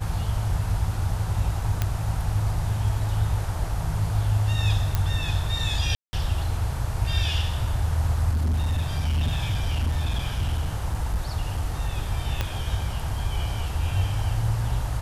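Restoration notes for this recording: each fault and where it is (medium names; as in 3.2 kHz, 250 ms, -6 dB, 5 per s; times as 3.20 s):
1.82 s: pop -10 dBFS
4.95 s: pop -9 dBFS
5.95–6.13 s: dropout 180 ms
8.29–11.89 s: clipped -20 dBFS
12.41 s: pop -11 dBFS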